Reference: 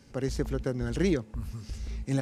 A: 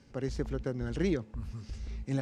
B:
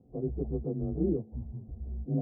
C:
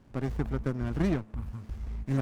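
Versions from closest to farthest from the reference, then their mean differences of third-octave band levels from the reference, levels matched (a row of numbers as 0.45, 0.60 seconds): A, C, B; 1.5, 4.0, 12.0 decibels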